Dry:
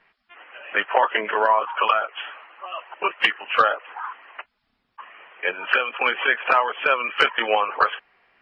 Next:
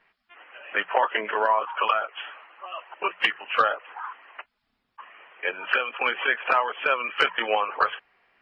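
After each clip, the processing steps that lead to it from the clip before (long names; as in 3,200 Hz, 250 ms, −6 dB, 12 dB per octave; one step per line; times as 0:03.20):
mains-hum notches 60/120/180 Hz
level −3.5 dB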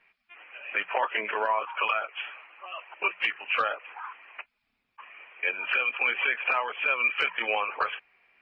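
parametric band 2,400 Hz +12 dB 0.34 octaves
brickwall limiter −11 dBFS, peak gain reduction 7.5 dB
level −4.5 dB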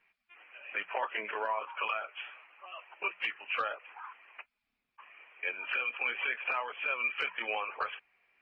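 flanger 0.25 Hz, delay 0.7 ms, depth 8.9 ms, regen −79%
level −2.5 dB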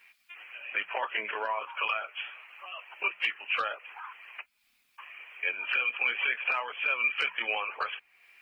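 high-shelf EQ 2,800 Hz +11.5 dB
one half of a high-frequency compander encoder only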